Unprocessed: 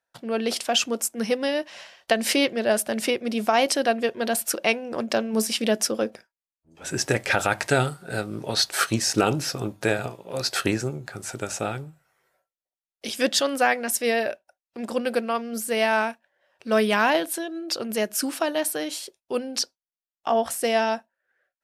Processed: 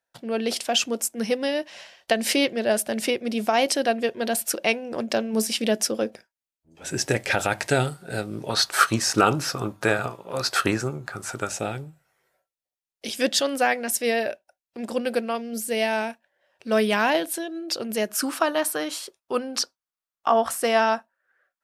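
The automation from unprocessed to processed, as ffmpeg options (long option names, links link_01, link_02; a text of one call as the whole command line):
ffmpeg -i in.wav -af "asetnsamples=nb_out_samples=441:pad=0,asendcmd='8.5 equalizer g 8.5;11.49 equalizer g -3.5;15.35 equalizer g -10.5;16.1 equalizer g -3;18.09 equalizer g 9',equalizer=frequency=1200:width_type=o:width=0.75:gain=-3.5" out.wav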